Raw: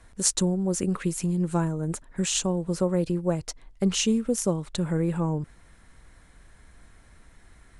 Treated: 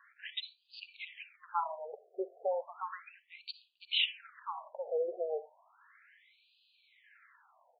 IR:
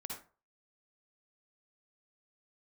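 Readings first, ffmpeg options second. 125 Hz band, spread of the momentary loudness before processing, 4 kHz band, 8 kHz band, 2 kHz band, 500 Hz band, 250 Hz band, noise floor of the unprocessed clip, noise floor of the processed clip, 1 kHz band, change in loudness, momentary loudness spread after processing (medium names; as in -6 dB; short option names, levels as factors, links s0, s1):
under -40 dB, 7 LU, -3.0 dB, under -40 dB, -2.0 dB, -8.5 dB, -30.5 dB, -55 dBFS, -71 dBFS, -1.5 dB, -11.5 dB, 17 LU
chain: -filter_complex "[0:a]asplit=2[s0][s1];[s1]aecho=1:1:3:0.51[s2];[1:a]atrim=start_sample=2205,lowshelf=f=450:g=-10.5[s3];[s2][s3]afir=irnorm=-1:irlink=0,volume=0.447[s4];[s0][s4]amix=inputs=2:normalize=0,afftfilt=real='re*between(b*sr/1024,520*pow(3500/520,0.5+0.5*sin(2*PI*0.34*pts/sr))/1.41,520*pow(3500/520,0.5+0.5*sin(2*PI*0.34*pts/sr))*1.41)':imag='im*between(b*sr/1024,520*pow(3500/520,0.5+0.5*sin(2*PI*0.34*pts/sr))/1.41,520*pow(3500/520,0.5+0.5*sin(2*PI*0.34*pts/sr))*1.41)':win_size=1024:overlap=0.75"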